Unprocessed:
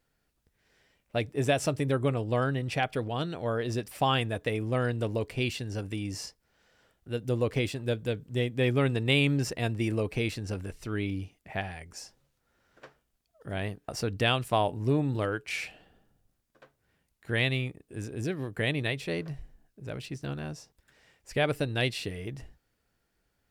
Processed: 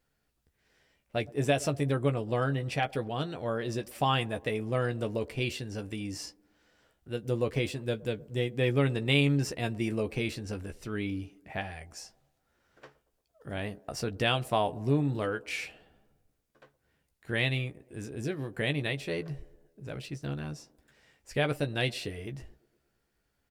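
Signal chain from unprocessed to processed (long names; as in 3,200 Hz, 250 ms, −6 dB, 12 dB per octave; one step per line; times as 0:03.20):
double-tracking delay 14 ms −8.5 dB
delay with a band-pass on its return 115 ms, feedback 58%, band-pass 470 Hz, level −21 dB
level −2 dB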